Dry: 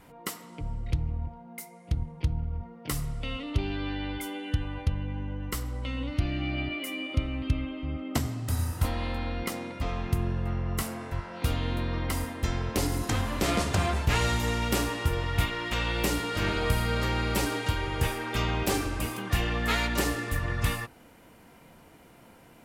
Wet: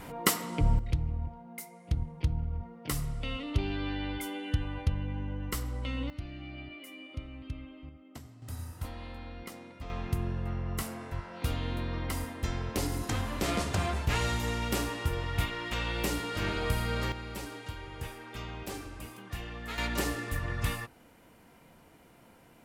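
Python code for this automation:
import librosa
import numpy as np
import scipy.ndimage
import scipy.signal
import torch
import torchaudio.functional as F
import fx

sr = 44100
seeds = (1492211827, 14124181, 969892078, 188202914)

y = fx.gain(x, sr, db=fx.steps((0.0, 9.5), (0.79, -1.5), (6.1, -12.5), (7.89, -19.0), (8.42, -11.5), (9.9, -4.0), (17.12, -12.5), (19.78, -4.0)))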